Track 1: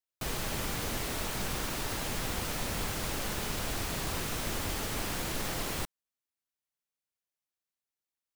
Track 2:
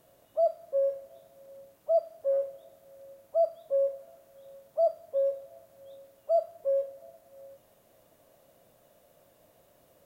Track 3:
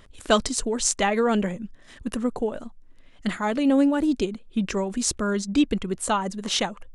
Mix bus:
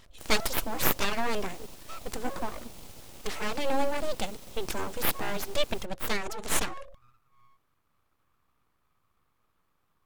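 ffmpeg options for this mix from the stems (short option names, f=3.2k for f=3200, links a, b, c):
-filter_complex "[0:a]equalizer=f=1.6k:w=2.1:g=-13.5,volume=-11.5dB[a];[1:a]bass=f=250:g=-7,treble=f=4k:g=-9,alimiter=limit=-24dB:level=0:latency=1:release=341,volume=-8.5dB[b];[2:a]equalizer=f=5k:w=0.61:g=7.5,volume=-4.5dB[c];[a][b][c]amix=inputs=3:normalize=0,aeval=exprs='abs(val(0))':c=same"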